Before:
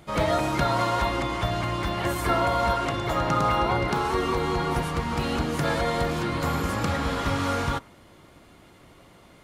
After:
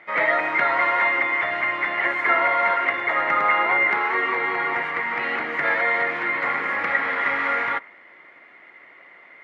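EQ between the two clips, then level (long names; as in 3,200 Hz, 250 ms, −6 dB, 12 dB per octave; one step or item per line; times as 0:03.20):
high-pass filter 450 Hz 12 dB per octave
low-pass with resonance 2,000 Hz, resonance Q 9.2
0.0 dB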